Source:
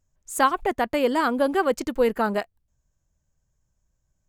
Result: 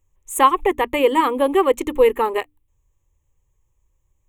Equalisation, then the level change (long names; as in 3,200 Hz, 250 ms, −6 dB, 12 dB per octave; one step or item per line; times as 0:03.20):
mains-hum notches 60/120/180/240/300 Hz
phaser with its sweep stopped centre 1,000 Hz, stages 8
+8.0 dB